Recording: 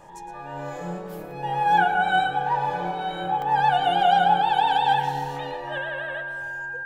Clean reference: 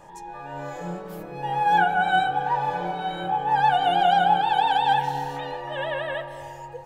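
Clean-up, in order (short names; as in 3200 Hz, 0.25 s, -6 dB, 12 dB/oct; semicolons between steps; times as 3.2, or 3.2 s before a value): notch 1600 Hz, Q 30; interpolate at 1.31/3.42, 1.2 ms; inverse comb 0.113 s -12 dB; gain 0 dB, from 5.78 s +5.5 dB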